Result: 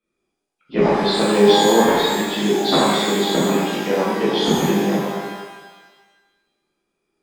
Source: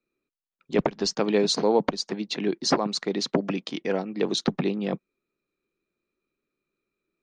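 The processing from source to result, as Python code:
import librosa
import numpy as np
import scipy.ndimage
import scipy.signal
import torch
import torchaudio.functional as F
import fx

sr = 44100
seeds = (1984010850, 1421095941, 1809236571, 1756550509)

y = fx.freq_compress(x, sr, knee_hz=2400.0, ratio=1.5)
y = fx.rev_shimmer(y, sr, seeds[0], rt60_s=1.3, semitones=12, shimmer_db=-8, drr_db=-9.0)
y = y * librosa.db_to_amplitude(-1.5)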